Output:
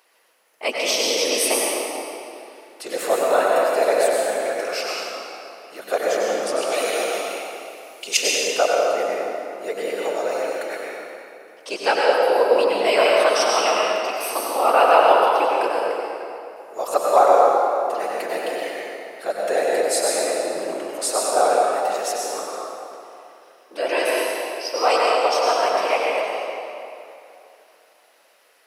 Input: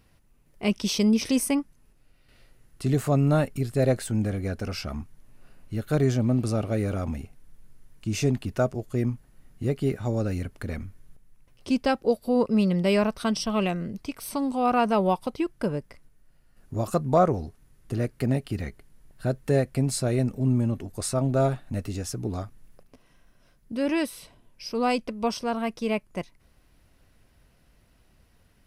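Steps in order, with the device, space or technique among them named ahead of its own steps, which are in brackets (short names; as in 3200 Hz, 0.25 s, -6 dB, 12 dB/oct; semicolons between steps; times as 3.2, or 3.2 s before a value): 6.61–8.17 resonant high shelf 2100 Hz +10.5 dB, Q 1.5; whispering ghost (whisperiser; HPF 510 Hz 24 dB/oct; reverb RT60 2.7 s, pre-delay 87 ms, DRR -3.5 dB); gain +6.5 dB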